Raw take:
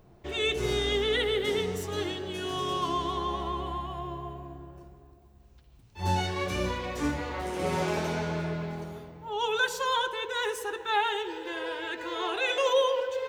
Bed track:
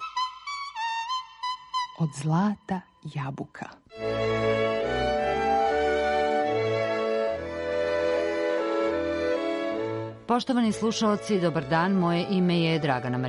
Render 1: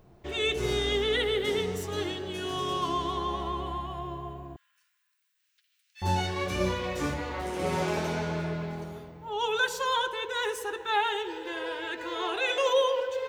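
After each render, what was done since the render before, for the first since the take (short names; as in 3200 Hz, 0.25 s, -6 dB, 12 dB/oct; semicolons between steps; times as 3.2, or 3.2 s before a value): 4.56–6.02 steep high-pass 1600 Hz; 6.58–7.14 doubler 22 ms -3.5 dB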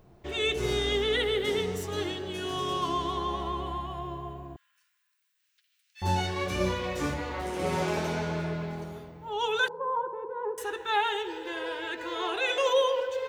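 9.68–10.58 Chebyshev band-pass 120–1000 Hz, order 3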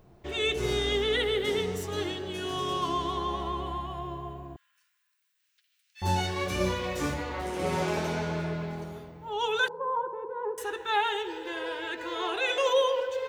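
6.03–7.23 high shelf 6600 Hz +4.5 dB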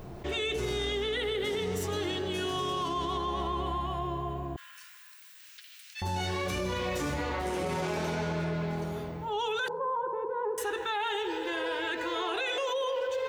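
limiter -25 dBFS, peak gain reduction 10.5 dB; fast leveller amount 50%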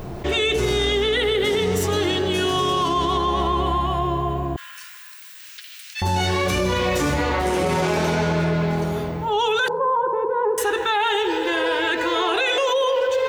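gain +11 dB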